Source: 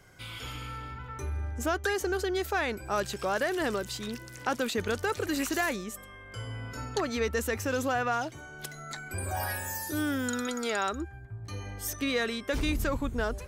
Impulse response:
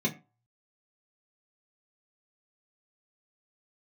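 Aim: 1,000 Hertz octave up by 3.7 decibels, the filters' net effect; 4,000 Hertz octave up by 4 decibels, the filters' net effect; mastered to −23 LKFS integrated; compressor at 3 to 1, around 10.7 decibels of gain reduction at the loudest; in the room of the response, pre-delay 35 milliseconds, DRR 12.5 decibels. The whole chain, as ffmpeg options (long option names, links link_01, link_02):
-filter_complex "[0:a]equalizer=frequency=1000:width_type=o:gain=5,equalizer=frequency=4000:width_type=o:gain=4.5,acompressor=threshold=-37dB:ratio=3,asplit=2[link_01][link_02];[1:a]atrim=start_sample=2205,adelay=35[link_03];[link_02][link_03]afir=irnorm=-1:irlink=0,volume=-20dB[link_04];[link_01][link_04]amix=inputs=2:normalize=0,volume=15dB"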